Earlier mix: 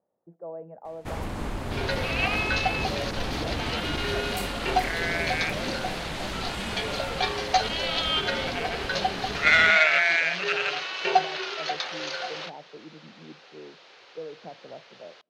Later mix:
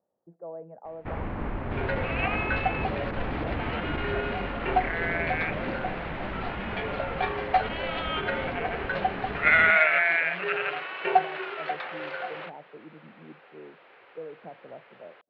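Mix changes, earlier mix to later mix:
speech: send off; master: add low-pass 2.4 kHz 24 dB/octave

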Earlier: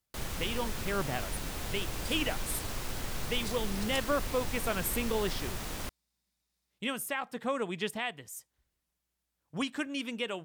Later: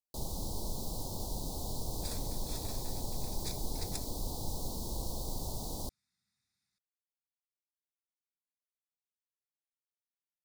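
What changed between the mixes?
speech: muted; first sound: add Chebyshev band-stop 900–4100 Hz, order 3; second sound: remove static phaser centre 360 Hz, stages 6

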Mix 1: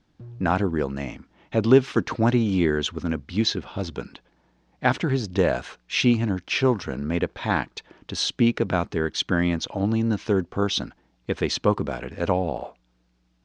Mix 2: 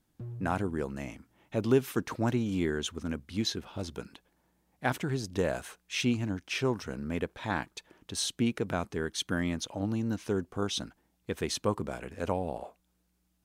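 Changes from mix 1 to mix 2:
speech -8.5 dB; master: remove low-pass 5.5 kHz 24 dB/octave

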